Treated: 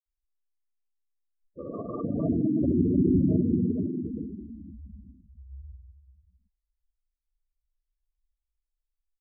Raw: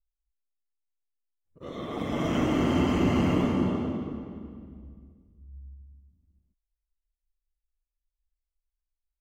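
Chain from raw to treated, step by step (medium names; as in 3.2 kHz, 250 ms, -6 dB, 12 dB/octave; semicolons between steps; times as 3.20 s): granulator 100 ms, pitch spread up and down by 0 st; spectral gate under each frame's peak -10 dB strong; low-pass that closes with the level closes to 810 Hz, closed at -28.5 dBFS; trim +3.5 dB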